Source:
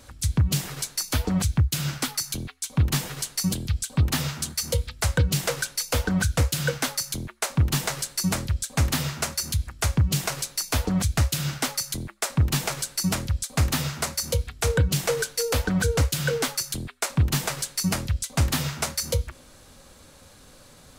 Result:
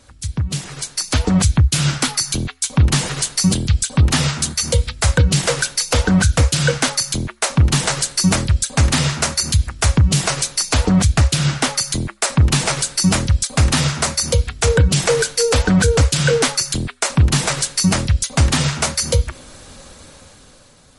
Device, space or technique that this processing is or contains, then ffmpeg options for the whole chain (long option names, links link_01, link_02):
low-bitrate web radio: -filter_complex "[0:a]asettb=1/sr,asplit=3[link_01][link_02][link_03];[link_01]atrim=end=10.874[link_04];[link_02]atrim=start=10.87:end=11.81,asetpts=PTS-STARTPTS,afade=type=in:duration=0.004:curve=qsin,afade=type=out:start_time=0.936:duration=0.004:curve=qsin,highshelf=frequency=4200:gain=-4[link_05];[link_03]atrim=start=11.806[link_06];[link_04][link_05]acrossfade=duration=0.004:curve1=hsin:curve2=qsin[link_07];[link_07][link_06]acrossfade=duration=0.004:curve1=qsin:curve2=hsin,dynaudnorm=framelen=300:gausssize=7:maxgain=16dB,alimiter=limit=-5.5dB:level=0:latency=1:release=18" -ar 48000 -c:a libmp3lame -b:a 48k